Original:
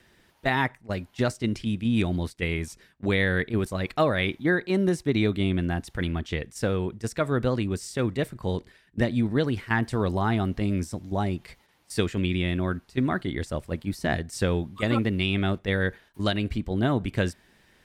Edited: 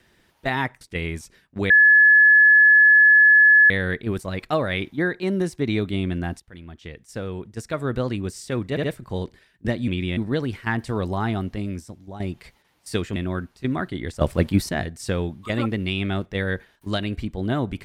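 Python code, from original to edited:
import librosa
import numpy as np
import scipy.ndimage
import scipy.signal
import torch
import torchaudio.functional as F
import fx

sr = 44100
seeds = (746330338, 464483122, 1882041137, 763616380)

y = fx.edit(x, sr, fx.cut(start_s=0.81, length_s=1.47),
    fx.insert_tone(at_s=3.17, length_s=2.0, hz=1710.0, db=-9.5),
    fx.fade_in_from(start_s=5.87, length_s=1.59, floor_db=-20.0),
    fx.stutter(start_s=8.17, slice_s=0.07, count=3),
    fx.fade_out_to(start_s=10.38, length_s=0.86, floor_db=-12.5),
    fx.move(start_s=12.2, length_s=0.29, to_s=9.21),
    fx.clip_gain(start_s=13.54, length_s=0.48, db=10.5), tone=tone)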